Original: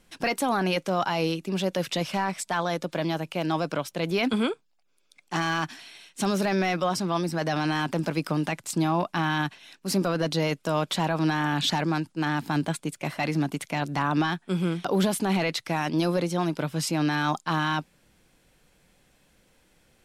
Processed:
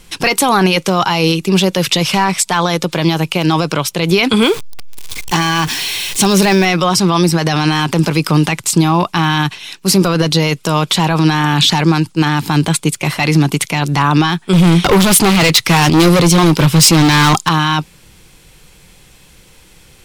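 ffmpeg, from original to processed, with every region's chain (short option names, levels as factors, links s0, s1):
-filter_complex "[0:a]asettb=1/sr,asplit=3[s0][s1][s2];[s0]atrim=end=4.424[s3];[s1]atrim=start=4.42:end=6.65,asetpts=PTS-STARTPTS,afade=t=in:d=0.004:c=qsin,afade=t=out:st=2.226:d=0.004:c=qsin,aeval=exprs='val(0)+0.5*0.0141*sgn(val(0))':c=same,bandreject=f=1300:w=8.6[s4];[s2]atrim=start=6.646[s5];[s3][s4]acrossfade=d=0.004:c1=hsin:c2=qsin[s6];[s6][s5]acrossfade=d=0.004:c1=qsin:c2=hsin,asettb=1/sr,asplit=3[s7][s8][s9];[s7]atrim=end=14.534[s10];[s8]atrim=start=14.53:end=17.49,asetpts=PTS-STARTPTS,afade=t=in:d=0.004:c=qsin,afade=t=out:st=2.956:d=0.004:c=qsin,acontrast=68,asoftclip=type=hard:threshold=0.0794[s11];[s9]atrim=start=17.486[s12];[s10][s11]acrossfade=d=0.004:c1=hsin:c2=qsin[s13];[s13][s12]acrossfade=d=0.004:c1=qsin:c2=hsin,equalizer=f=250:t=o:w=0.67:g=-9,equalizer=f=630:t=o:w=0.67:g=-10,equalizer=f=1600:t=o:w=0.67:g=-6,alimiter=level_in=11.9:limit=0.891:release=50:level=0:latency=1,volume=0.891"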